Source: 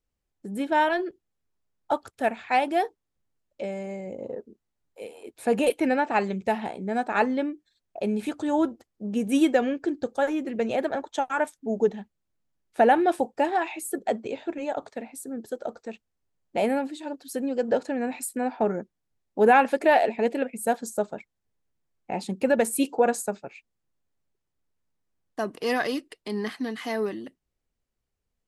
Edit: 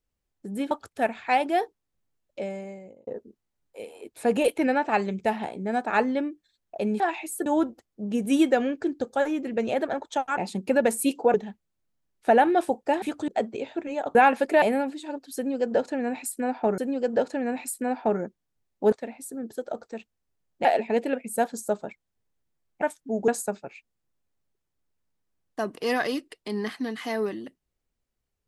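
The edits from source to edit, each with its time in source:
0.71–1.93 cut
3.67–4.29 fade out
8.22–8.48 swap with 13.53–13.99
11.39–11.85 swap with 22.11–23.08
14.86–16.59 swap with 19.47–19.94
17.33–18.75 loop, 2 plays

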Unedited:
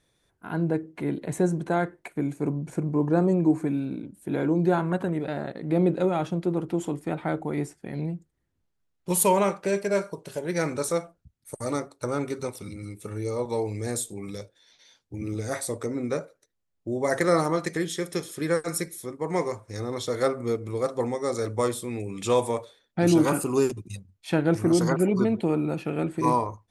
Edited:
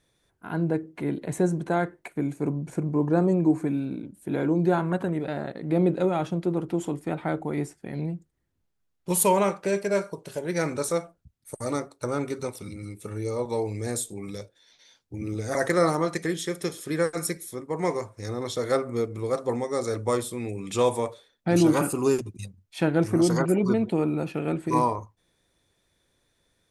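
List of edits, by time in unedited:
15.55–17.06 cut

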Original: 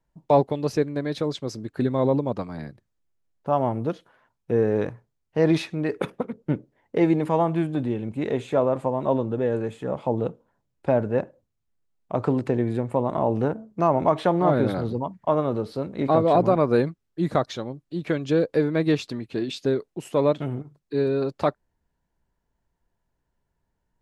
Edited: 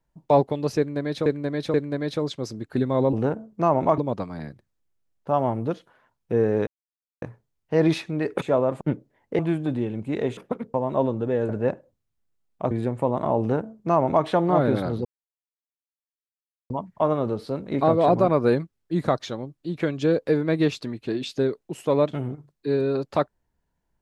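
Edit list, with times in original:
0.78–1.26 loop, 3 plays
4.86 insert silence 0.55 s
6.06–6.43 swap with 8.46–8.85
7.01–7.48 cut
9.6–10.99 cut
12.21–12.63 cut
13.32–14.17 copy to 2.17
14.97 insert silence 1.65 s

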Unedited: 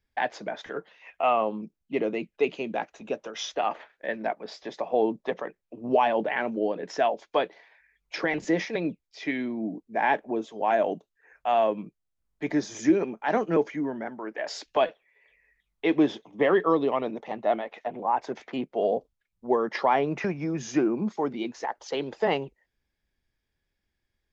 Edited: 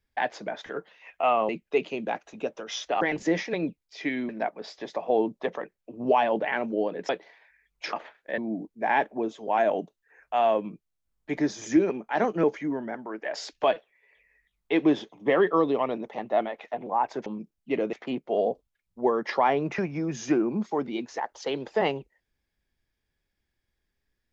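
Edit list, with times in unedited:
1.49–2.16 move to 18.39
3.68–4.13 swap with 8.23–9.51
6.93–7.39 cut

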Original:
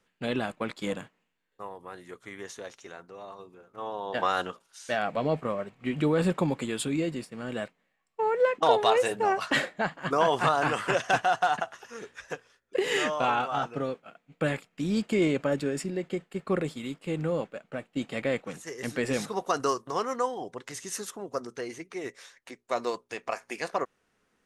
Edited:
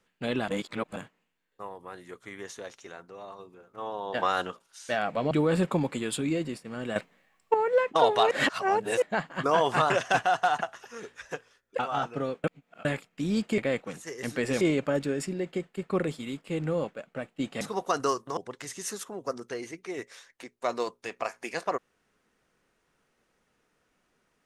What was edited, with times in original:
0.48–0.96 reverse
5.31–5.98 cut
7.63–8.21 gain +9.5 dB
8.98–9.69 reverse
10.57–10.89 cut
12.78–13.39 cut
14.04–14.45 reverse
18.18–19.21 move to 15.18
19.97–20.44 cut

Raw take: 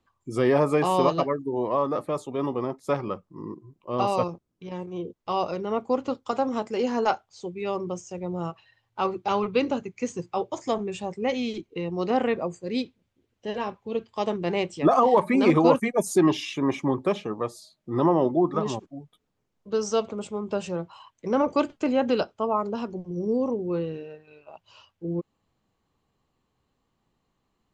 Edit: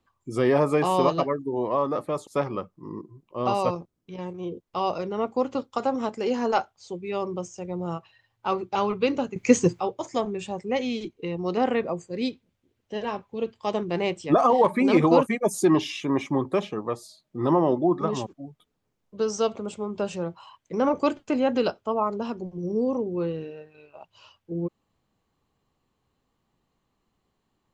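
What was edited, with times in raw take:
2.27–2.8 cut
9.89–10.33 gain +12 dB

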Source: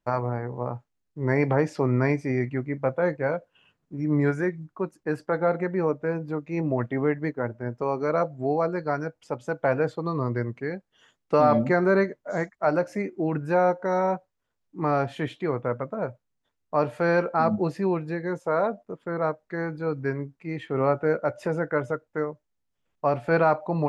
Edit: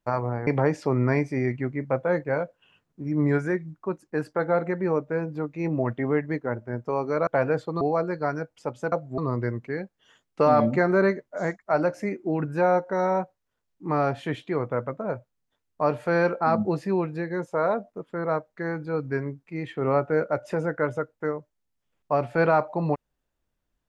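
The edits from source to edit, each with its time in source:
0.47–1.4 cut
8.2–8.46 swap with 9.57–10.11

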